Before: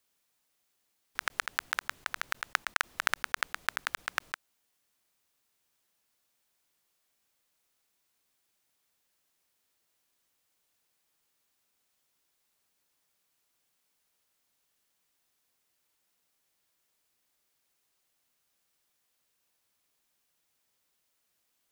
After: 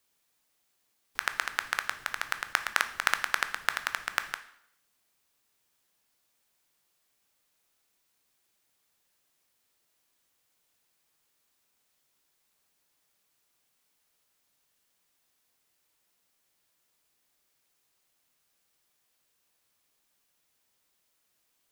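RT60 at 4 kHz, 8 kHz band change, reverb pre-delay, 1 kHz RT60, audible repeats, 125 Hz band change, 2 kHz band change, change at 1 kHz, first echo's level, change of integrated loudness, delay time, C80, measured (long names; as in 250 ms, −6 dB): 0.65 s, +2.5 dB, 6 ms, 0.70 s, no echo audible, can't be measured, +2.5 dB, +2.5 dB, no echo audible, +2.5 dB, no echo audible, 16.5 dB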